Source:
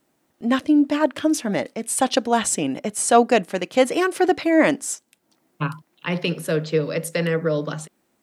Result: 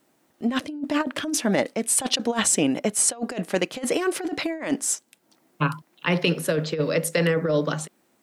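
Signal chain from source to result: bass shelf 85 Hz -9.5 dB; compressor with a negative ratio -22 dBFS, ratio -0.5

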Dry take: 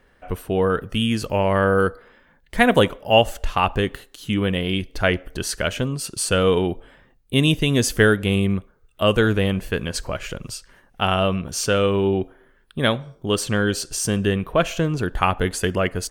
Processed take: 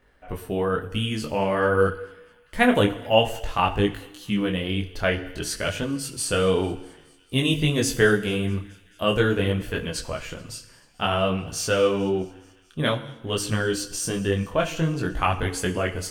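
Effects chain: feedback echo behind a high-pass 217 ms, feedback 72%, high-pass 2.1 kHz, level -24 dB; FDN reverb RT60 1 s, low-frequency decay 1×, high-frequency decay 0.95×, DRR 10.5 dB; detune thickener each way 18 cents

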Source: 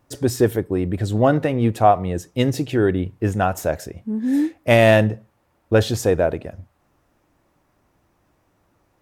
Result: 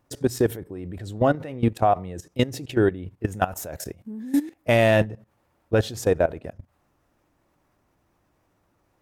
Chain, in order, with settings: 3.31–4.62 s: treble shelf 8.2 kHz +10 dB; level held to a coarse grid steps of 17 dB

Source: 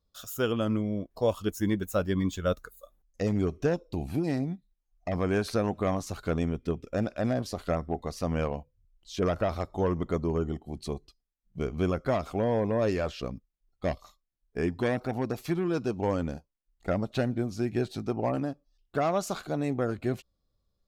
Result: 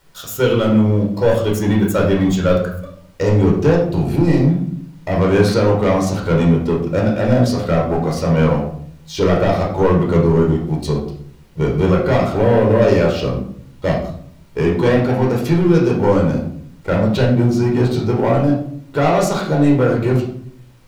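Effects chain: high-pass 40 Hz; peaking EQ 73 Hz -8 dB 0.47 oct; waveshaping leveller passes 2; added noise pink -61 dBFS; reverberation RT60 0.60 s, pre-delay 13 ms, DRR -2 dB; trim +1.5 dB

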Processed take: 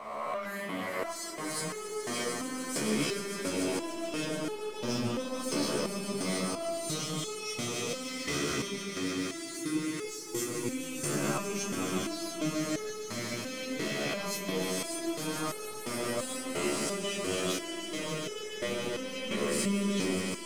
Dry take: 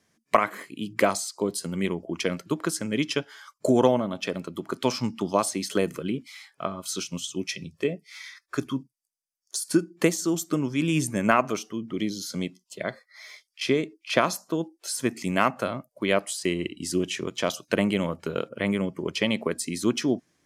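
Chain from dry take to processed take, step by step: reverse spectral sustain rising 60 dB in 0.71 s; reverse; compression 6:1, threshold -32 dBFS, peak gain reduction 19.5 dB; reverse; waveshaping leveller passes 2; echo with a slow build-up 145 ms, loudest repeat 5, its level -8 dB; resonator arpeggio 2.9 Hz 72–430 Hz; trim +3 dB

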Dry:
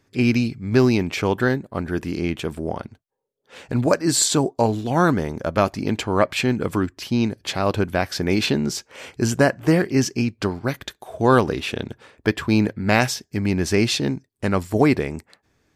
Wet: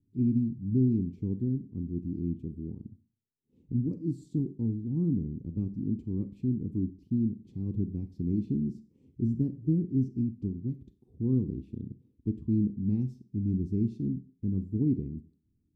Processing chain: inverse Chebyshev low-pass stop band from 580 Hz, stop band 40 dB; Schroeder reverb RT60 0.41 s, combs from 31 ms, DRR 12 dB; trim -6 dB

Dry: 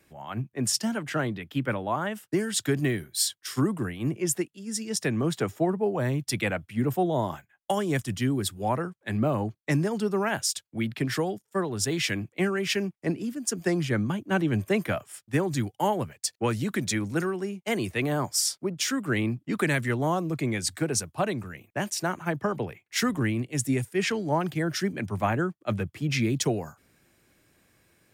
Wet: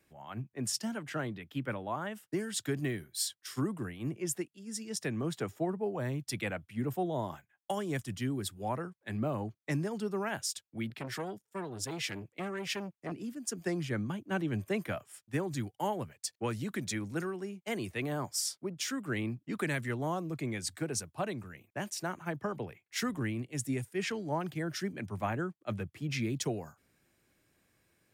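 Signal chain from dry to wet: 10.90–13.12 s: transformer saturation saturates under 1.1 kHz; trim -8 dB

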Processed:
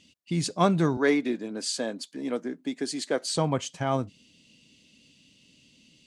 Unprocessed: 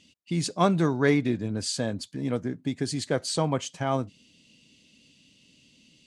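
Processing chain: 0.97–3.28 s: high-pass 240 Hz 24 dB/octave

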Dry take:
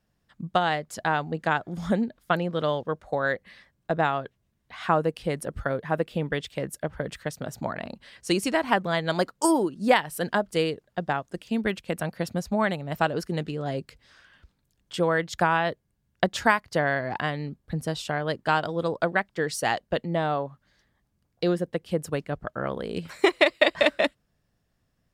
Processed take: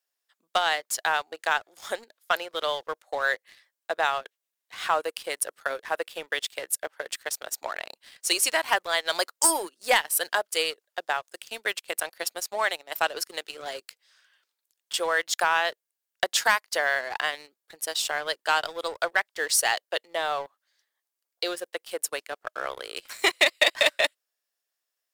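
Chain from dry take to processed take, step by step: high-pass 390 Hz 24 dB/octave; tilt EQ +4 dB/octave; waveshaping leveller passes 2; trim -7.5 dB

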